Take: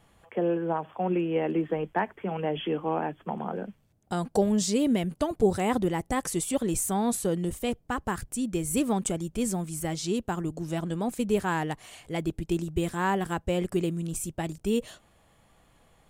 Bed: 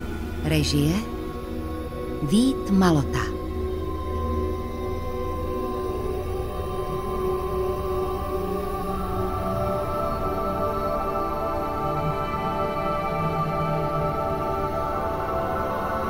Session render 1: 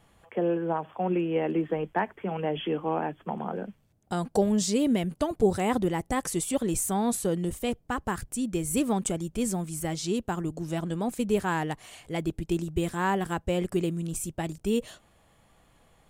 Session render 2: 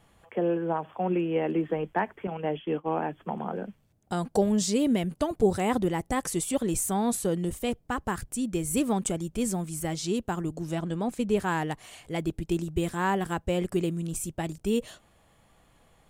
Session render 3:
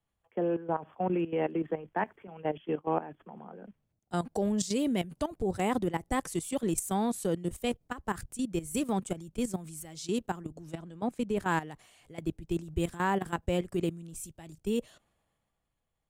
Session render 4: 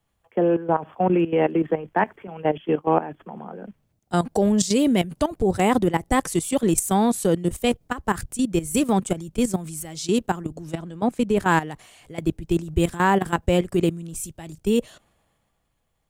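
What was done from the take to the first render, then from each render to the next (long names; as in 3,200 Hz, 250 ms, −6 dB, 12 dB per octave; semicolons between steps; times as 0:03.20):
no processing that can be heard
0:02.27–0:02.98: downward expander −29 dBFS; 0:10.75–0:11.40: high-shelf EQ 10,000 Hz −11 dB
output level in coarse steps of 14 dB; multiband upward and downward expander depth 40%
level +10 dB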